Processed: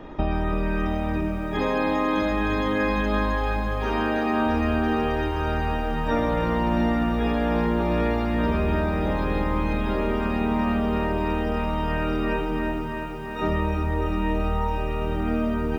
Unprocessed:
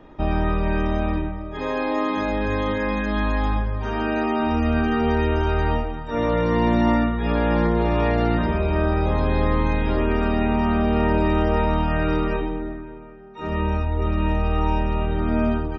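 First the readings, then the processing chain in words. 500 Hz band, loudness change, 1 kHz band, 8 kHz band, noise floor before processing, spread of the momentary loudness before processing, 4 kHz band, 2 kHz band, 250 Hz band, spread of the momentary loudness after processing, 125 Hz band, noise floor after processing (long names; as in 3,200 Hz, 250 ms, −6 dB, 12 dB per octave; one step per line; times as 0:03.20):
−2.5 dB, −2.5 dB, −1.5 dB, can't be measured, −34 dBFS, 6 LU, −1.0 dB, −0.5 dB, −2.0 dB, 4 LU, −4.0 dB, −29 dBFS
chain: downward compressor 8 to 1, threshold −27 dBFS, peak gain reduction 12.5 dB
parametric band 100 Hz −5 dB 0.29 octaves
feedback echo at a low word length 338 ms, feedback 80%, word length 10 bits, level −8 dB
level +6.5 dB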